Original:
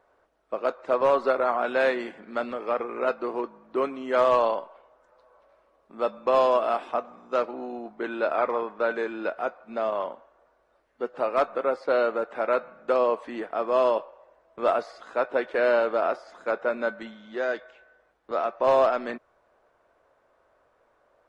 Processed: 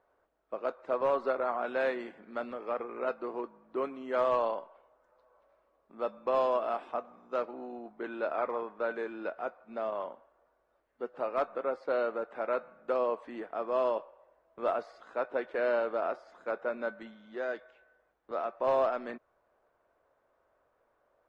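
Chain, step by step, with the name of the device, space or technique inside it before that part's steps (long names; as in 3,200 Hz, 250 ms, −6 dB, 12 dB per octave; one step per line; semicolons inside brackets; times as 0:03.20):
behind a face mask (high-shelf EQ 3,400 Hz −7 dB)
level −7 dB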